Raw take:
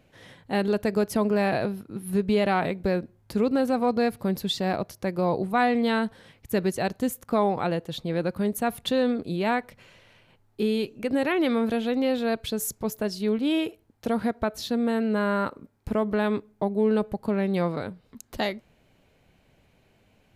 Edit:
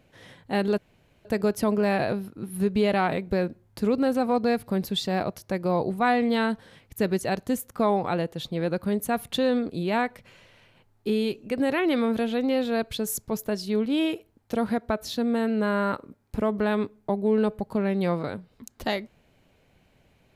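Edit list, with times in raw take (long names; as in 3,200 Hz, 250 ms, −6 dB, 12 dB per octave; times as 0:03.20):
0:00.78: splice in room tone 0.47 s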